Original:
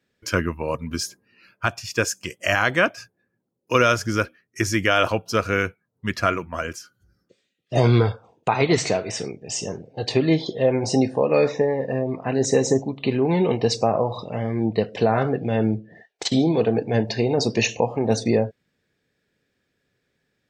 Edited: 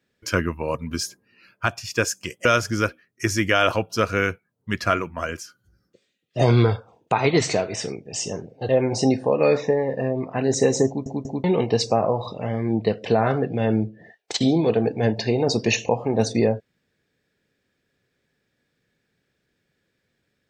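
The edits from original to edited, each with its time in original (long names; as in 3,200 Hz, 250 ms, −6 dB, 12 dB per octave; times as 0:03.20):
0:02.45–0:03.81: remove
0:10.05–0:10.60: remove
0:12.78: stutter in place 0.19 s, 3 plays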